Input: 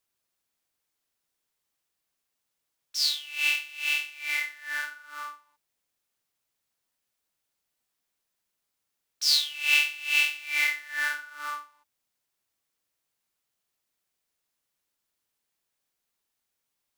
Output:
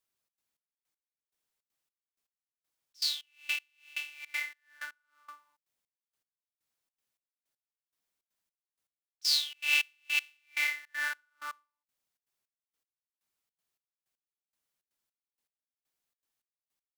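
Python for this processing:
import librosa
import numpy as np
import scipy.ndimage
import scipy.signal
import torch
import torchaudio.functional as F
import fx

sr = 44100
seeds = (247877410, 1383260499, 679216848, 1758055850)

p1 = fx.step_gate(x, sr, bpm=159, pattern='xxx.xx...x....', floor_db=-24.0, edge_ms=4.5)
p2 = fx.quant_float(p1, sr, bits=2)
p3 = p1 + F.gain(torch.from_numpy(p2), -8.5).numpy()
y = F.gain(torch.from_numpy(p3), -7.5).numpy()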